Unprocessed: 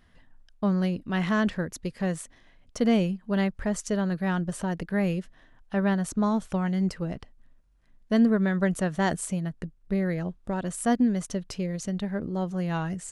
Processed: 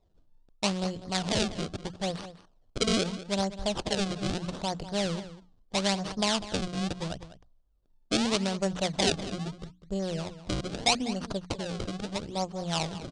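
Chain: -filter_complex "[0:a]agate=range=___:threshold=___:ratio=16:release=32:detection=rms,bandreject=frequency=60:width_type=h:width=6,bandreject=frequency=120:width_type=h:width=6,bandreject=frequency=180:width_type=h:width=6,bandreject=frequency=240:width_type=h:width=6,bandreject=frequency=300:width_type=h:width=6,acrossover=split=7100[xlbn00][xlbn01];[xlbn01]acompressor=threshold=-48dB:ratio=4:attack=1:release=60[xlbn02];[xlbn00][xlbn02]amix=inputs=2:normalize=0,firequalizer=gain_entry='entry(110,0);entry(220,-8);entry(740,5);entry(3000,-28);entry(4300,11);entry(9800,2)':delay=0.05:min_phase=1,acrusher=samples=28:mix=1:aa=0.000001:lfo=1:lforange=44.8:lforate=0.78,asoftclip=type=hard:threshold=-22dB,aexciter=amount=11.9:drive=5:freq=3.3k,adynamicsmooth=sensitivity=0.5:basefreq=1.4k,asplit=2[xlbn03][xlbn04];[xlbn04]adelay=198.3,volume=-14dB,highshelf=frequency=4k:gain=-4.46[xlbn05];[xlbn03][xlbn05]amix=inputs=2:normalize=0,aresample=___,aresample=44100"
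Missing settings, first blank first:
-7dB, -45dB, 22050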